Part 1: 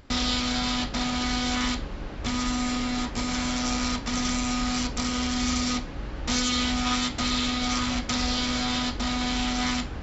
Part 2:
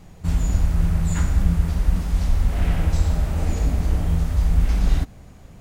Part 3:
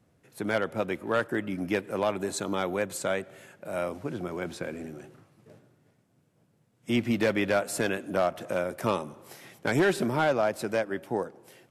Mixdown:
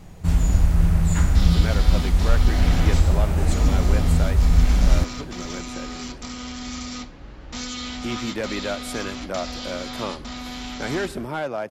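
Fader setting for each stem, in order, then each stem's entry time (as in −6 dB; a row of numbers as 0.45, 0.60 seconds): −6.5, +2.0, −3.0 decibels; 1.25, 0.00, 1.15 seconds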